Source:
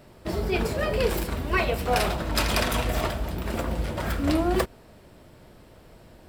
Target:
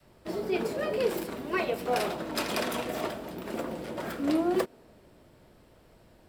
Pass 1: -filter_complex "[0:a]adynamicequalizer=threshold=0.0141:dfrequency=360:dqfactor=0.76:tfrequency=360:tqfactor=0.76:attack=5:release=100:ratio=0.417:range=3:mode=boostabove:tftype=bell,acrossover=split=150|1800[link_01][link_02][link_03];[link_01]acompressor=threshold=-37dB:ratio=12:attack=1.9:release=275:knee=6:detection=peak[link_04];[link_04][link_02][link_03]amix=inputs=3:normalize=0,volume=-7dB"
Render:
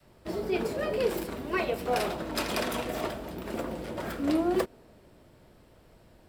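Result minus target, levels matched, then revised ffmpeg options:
downward compressor: peak gain reduction −11 dB
-filter_complex "[0:a]adynamicequalizer=threshold=0.0141:dfrequency=360:dqfactor=0.76:tfrequency=360:tqfactor=0.76:attack=5:release=100:ratio=0.417:range=3:mode=boostabove:tftype=bell,acrossover=split=150|1800[link_01][link_02][link_03];[link_01]acompressor=threshold=-49dB:ratio=12:attack=1.9:release=275:knee=6:detection=peak[link_04];[link_04][link_02][link_03]amix=inputs=3:normalize=0,volume=-7dB"

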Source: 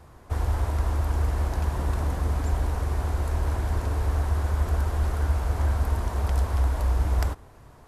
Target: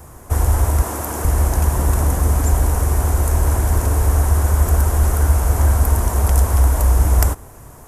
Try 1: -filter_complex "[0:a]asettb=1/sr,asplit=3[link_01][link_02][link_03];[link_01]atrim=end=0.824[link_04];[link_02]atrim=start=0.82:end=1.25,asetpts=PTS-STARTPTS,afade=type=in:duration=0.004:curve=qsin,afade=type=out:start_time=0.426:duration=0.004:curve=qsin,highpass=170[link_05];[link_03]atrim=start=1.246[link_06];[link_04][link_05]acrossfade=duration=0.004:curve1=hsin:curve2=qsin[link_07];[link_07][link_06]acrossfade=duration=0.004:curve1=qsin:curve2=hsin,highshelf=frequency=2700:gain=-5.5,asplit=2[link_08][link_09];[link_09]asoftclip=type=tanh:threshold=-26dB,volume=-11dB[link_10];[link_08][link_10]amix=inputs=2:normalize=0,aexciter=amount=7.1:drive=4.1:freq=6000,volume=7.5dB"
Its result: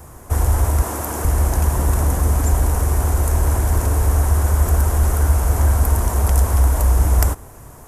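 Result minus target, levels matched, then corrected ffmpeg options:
soft clipping: distortion +15 dB
-filter_complex "[0:a]asettb=1/sr,asplit=3[link_01][link_02][link_03];[link_01]atrim=end=0.824[link_04];[link_02]atrim=start=0.82:end=1.25,asetpts=PTS-STARTPTS,afade=type=in:duration=0.004:curve=qsin,afade=type=out:start_time=0.426:duration=0.004:curve=qsin,highpass=170[link_05];[link_03]atrim=start=1.246[link_06];[link_04][link_05]acrossfade=duration=0.004:curve1=hsin:curve2=qsin[link_07];[link_07][link_06]acrossfade=duration=0.004:curve1=qsin:curve2=hsin,highshelf=frequency=2700:gain=-5.5,asplit=2[link_08][link_09];[link_09]asoftclip=type=tanh:threshold=-14dB,volume=-11dB[link_10];[link_08][link_10]amix=inputs=2:normalize=0,aexciter=amount=7.1:drive=4.1:freq=6000,volume=7.5dB"

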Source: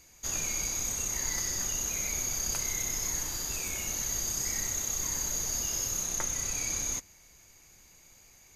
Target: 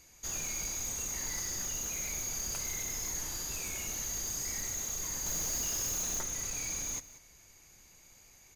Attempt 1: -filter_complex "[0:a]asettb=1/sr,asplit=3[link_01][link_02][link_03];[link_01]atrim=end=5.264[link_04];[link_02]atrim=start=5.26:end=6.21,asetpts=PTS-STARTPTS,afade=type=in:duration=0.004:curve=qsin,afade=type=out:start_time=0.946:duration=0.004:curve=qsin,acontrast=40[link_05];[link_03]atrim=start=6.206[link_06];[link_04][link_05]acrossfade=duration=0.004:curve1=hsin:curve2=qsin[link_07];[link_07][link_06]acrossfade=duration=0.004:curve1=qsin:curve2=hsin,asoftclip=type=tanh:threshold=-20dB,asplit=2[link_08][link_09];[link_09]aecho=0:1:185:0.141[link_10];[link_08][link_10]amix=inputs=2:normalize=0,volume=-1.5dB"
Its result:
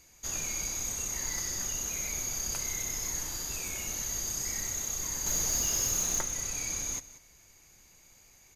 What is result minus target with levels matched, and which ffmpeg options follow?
soft clipping: distortion −11 dB
-filter_complex "[0:a]asettb=1/sr,asplit=3[link_01][link_02][link_03];[link_01]atrim=end=5.264[link_04];[link_02]atrim=start=5.26:end=6.21,asetpts=PTS-STARTPTS,afade=type=in:duration=0.004:curve=qsin,afade=type=out:start_time=0.946:duration=0.004:curve=qsin,acontrast=40[link_05];[link_03]atrim=start=6.206[link_06];[link_04][link_05]acrossfade=duration=0.004:curve1=hsin:curve2=qsin[link_07];[link_07][link_06]acrossfade=duration=0.004:curve1=qsin:curve2=hsin,asoftclip=type=tanh:threshold=-30dB,asplit=2[link_08][link_09];[link_09]aecho=0:1:185:0.141[link_10];[link_08][link_10]amix=inputs=2:normalize=0,volume=-1.5dB"

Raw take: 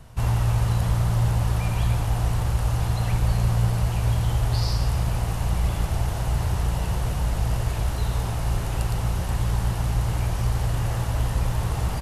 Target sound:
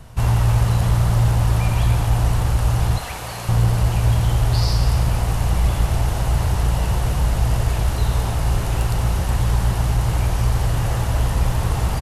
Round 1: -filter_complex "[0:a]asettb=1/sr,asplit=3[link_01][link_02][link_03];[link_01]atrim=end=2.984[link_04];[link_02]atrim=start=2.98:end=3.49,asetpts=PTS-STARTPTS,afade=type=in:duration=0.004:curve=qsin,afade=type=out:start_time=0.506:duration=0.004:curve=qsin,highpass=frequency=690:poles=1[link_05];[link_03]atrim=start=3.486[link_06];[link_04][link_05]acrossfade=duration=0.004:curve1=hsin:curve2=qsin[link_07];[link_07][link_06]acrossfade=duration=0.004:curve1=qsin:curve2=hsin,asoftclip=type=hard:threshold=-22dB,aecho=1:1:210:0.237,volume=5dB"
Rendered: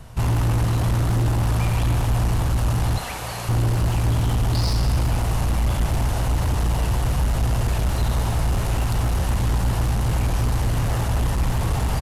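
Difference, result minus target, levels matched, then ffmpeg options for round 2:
hard clipping: distortion +18 dB
-filter_complex "[0:a]asettb=1/sr,asplit=3[link_01][link_02][link_03];[link_01]atrim=end=2.984[link_04];[link_02]atrim=start=2.98:end=3.49,asetpts=PTS-STARTPTS,afade=type=in:duration=0.004:curve=qsin,afade=type=out:start_time=0.506:duration=0.004:curve=qsin,highpass=frequency=690:poles=1[link_05];[link_03]atrim=start=3.486[link_06];[link_04][link_05]acrossfade=duration=0.004:curve1=hsin:curve2=qsin[link_07];[link_07][link_06]acrossfade=duration=0.004:curve1=qsin:curve2=hsin,asoftclip=type=hard:threshold=-14.5dB,aecho=1:1:210:0.237,volume=5dB"

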